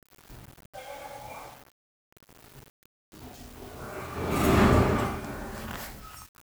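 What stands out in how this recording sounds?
tremolo triangle 0.91 Hz, depth 80%
a quantiser's noise floor 8 bits, dither none

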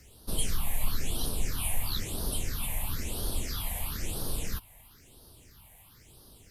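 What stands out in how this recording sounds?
a quantiser's noise floor 12 bits, dither triangular
phaser sweep stages 6, 1 Hz, lowest notch 350–2,200 Hz

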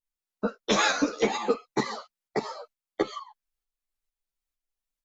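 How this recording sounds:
tremolo saw up 2.2 Hz, depth 55%
a shimmering, thickened sound

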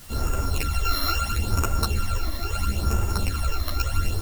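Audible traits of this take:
a buzz of ramps at a fixed pitch in blocks of 32 samples
phaser sweep stages 12, 0.75 Hz, lowest notch 140–4,200 Hz
a quantiser's noise floor 8 bits, dither triangular
a shimmering, thickened sound

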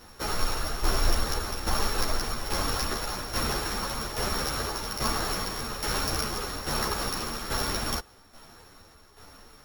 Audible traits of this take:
a buzz of ramps at a fixed pitch in blocks of 8 samples
tremolo saw down 1.2 Hz, depth 65%
a shimmering, thickened sound

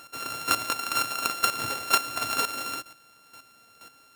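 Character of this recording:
a buzz of ramps at a fixed pitch in blocks of 32 samples
chopped level 2.1 Hz, depth 65%, duty 15%

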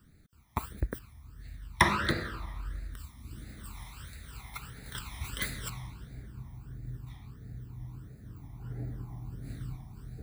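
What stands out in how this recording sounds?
phaser sweep stages 12, 1.5 Hz, lowest notch 470–1,000 Hz

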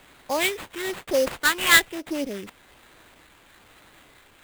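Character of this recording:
phaser sweep stages 8, 1.1 Hz, lowest notch 590–2,200 Hz
aliases and images of a low sample rate 5,600 Hz, jitter 20%

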